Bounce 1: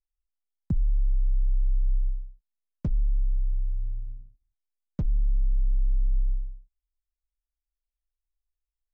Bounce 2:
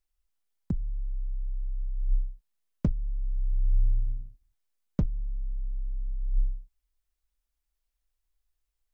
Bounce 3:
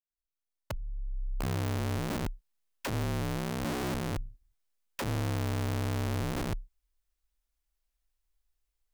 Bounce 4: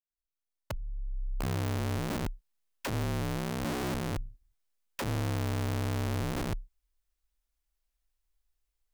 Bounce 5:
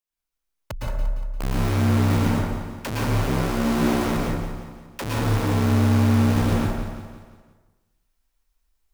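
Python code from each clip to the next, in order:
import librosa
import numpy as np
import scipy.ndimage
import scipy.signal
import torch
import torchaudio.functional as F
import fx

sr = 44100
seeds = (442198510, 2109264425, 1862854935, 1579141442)

y1 = fx.over_compress(x, sr, threshold_db=-26.0, ratio=-0.5)
y1 = y1 * 10.0 ** (1.5 / 20.0)
y2 = fx.fade_in_head(y1, sr, length_s=1.71)
y2 = (np.mod(10.0 ** (28.0 / 20.0) * y2 + 1.0, 2.0) - 1.0) / 10.0 ** (28.0 / 20.0)
y3 = y2
y4 = fx.echo_feedback(y3, sr, ms=174, feedback_pct=49, wet_db=-9.5)
y4 = fx.rev_plate(y4, sr, seeds[0], rt60_s=1.1, hf_ratio=0.45, predelay_ms=100, drr_db=-4.5)
y4 = y4 * 10.0 ** (3.5 / 20.0)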